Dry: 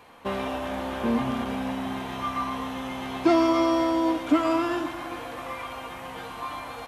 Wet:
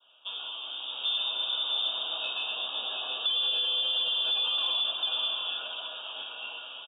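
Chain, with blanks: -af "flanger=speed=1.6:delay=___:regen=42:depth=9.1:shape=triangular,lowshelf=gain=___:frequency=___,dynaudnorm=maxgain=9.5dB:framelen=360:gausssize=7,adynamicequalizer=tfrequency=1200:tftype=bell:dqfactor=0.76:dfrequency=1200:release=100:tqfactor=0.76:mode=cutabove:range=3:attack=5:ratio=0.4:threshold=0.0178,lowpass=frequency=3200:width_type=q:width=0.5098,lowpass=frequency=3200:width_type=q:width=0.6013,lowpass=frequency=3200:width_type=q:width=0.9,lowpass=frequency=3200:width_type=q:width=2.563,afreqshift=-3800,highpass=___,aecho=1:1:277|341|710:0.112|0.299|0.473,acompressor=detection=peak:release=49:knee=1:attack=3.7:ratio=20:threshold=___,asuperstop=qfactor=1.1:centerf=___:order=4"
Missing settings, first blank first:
7.5, -5.5, 390, 300, -23dB, 2000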